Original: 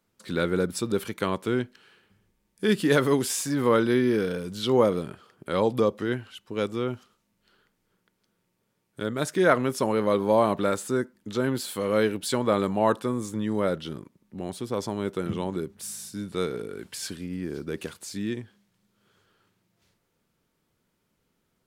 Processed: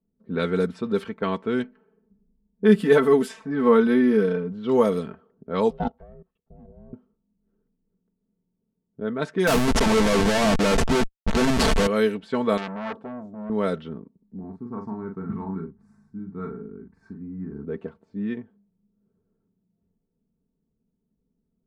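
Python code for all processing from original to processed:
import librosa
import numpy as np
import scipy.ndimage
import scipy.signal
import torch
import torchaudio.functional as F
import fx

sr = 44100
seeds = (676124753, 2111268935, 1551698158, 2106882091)

y = fx.chain(x, sr, fx.high_shelf(hz=3300.0, db=-12.0),
    fx.comb(ms=4.6, depth=0.58), at=(1.63, 4.52))
y = fx.chain(y, sr, fx.level_steps(step_db=21),
    fx.ring_mod(carrier_hz=280.0),
    fx.air_absorb(metres=84.0), at=(5.7, 6.93))
y = fx.chain(y, sr, fx.schmitt(flips_db=-30.5),
    fx.leveller(passes=3), at=(9.47, 11.87))
y = fx.chain(y, sr, fx.highpass(hz=71.0, slope=12),
    fx.peak_eq(hz=1700.0, db=-6.0, octaves=2.3),
    fx.transformer_sat(knee_hz=3500.0), at=(12.57, 13.5))
y = fx.chain(y, sr, fx.fixed_phaser(hz=1300.0, stages=4),
    fx.doubler(ms=42.0, db=-4.5), at=(14.39, 17.65))
y = fx.env_lowpass(y, sr, base_hz=300.0, full_db=-18.5)
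y = y + 0.62 * np.pad(y, (int(4.5 * sr / 1000.0), 0))[:len(y)]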